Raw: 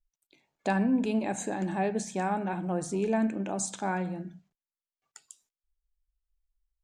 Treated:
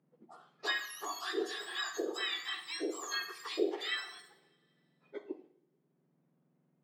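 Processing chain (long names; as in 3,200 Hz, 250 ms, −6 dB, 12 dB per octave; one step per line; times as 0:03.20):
frequency axis turned over on the octave scale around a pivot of 1,700 Hz
low-pass filter 2,400 Hz 12 dB per octave
spectral tilt +2 dB per octave
convolution reverb, pre-delay 31 ms, DRR 10.5 dB
multiband upward and downward compressor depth 40%
level +3 dB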